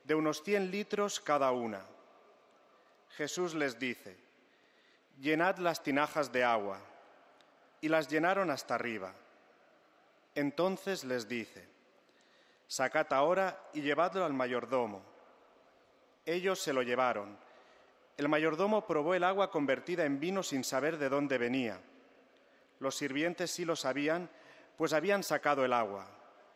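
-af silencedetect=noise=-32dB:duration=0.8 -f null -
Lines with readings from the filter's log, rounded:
silence_start: 1.77
silence_end: 3.20 | silence_duration: 1.43
silence_start: 3.92
silence_end: 5.26 | silence_duration: 1.34
silence_start: 6.74
silence_end: 7.84 | silence_duration: 1.10
silence_start: 9.08
silence_end: 10.37 | silence_duration: 1.29
silence_start: 11.42
silence_end: 12.72 | silence_duration: 1.30
silence_start: 14.86
silence_end: 16.28 | silence_duration: 1.42
silence_start: 17.22
silence_end: 18.19 | silence_duration: 0.97
silence_start: 21.74
silence_end: 22.84 | silence_duration: 1.11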